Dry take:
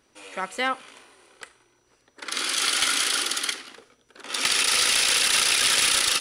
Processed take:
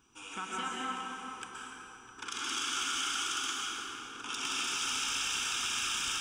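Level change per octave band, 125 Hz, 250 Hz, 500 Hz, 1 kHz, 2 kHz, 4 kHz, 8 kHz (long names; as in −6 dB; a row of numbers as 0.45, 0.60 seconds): can't be measured, −5.0 dB, −14.0 dB, −6.0 dB, −11.0 dB, −11.5 dB, −11.5 dB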